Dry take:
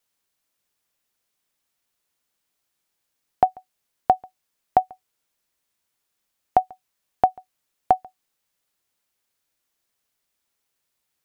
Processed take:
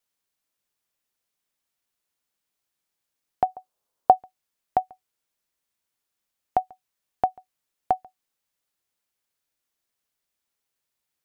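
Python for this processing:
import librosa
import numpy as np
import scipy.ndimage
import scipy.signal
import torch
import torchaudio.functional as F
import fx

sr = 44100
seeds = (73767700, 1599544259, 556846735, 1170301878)

y = fx.graphic_eq(x, sr, hz=(500, 1000, 2000), db=(8, 7, -5), at=(3.48, 4.18), fade=0.02)
y = y * 10.0 ** (-5.0 / 20.0)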